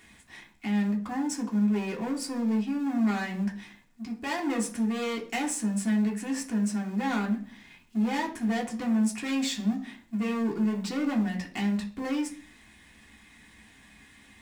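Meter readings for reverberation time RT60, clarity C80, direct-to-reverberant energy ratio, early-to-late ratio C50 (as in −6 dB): 0.45 s, 16.5 dB, −1.0 dB, 12.5 dB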